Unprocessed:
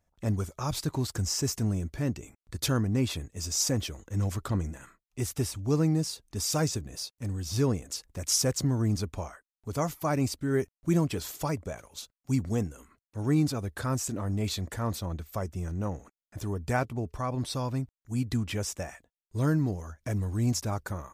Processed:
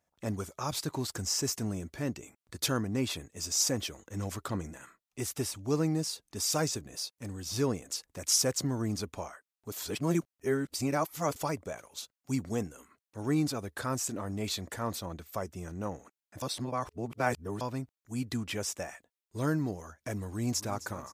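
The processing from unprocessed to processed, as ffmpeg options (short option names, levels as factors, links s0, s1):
-filter_complex "[0:a]asplit=2[s0][s1];[s1]afade=t=in:st=20.26:d=0.01,afade=t=out:st=20.73:d=0.01,aecho=0:1:260|520|780|1040|1300:0.177828|0.088914|0.044457|0.0222285|0.0111142[s2];[s0][s2]amix=inputs=2:normalize=0,asplit=5[s3][s4][s5][s6][s7];[s3]atrim=end=9.722[s8];[s4]atrim=start=9.718:end=11.362,asetpts=PTS-STARTPTS,areverse[s9];[s5]atrim=start=11.358:end=16.422[s10];[s6]atrim=start=16.418:end=17.612,asetpts=PTS-STARTPTS,areverse[s11];[s7]atrim=start=17.608[s12];[s8][s9]acrossfade=d=0.004:c1=hsin:c2=hsin[s13];[s13][s10]acrossfade=d=0.004:c1=hsin:c2=hsin[s14];[s14][s11]acrossfade=d=0.004:c1=hsin:c2=hsin[s15];[s15][s12]acrossfade=d=0.004:c1=hsin:c2=hsin,highpass=f=270:p=1"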